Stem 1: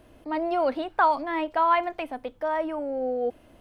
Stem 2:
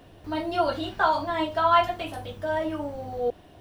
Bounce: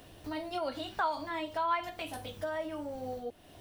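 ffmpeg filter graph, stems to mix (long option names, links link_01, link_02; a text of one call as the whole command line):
ffmpeg -i stem1.wav -i stem2.wav -filter_complex "[0:a]volume=-12dB[link_01];[1:a]alimiter=limit=-20dB:level=0:latency=1:release=95,acompressor=threshold=-37dB:ratio=4,volume=-4dB[link_02];[link_01][link_02]amix=inputs=2:normalize=0,highshelf=frequency=3100:gain=11" out.wav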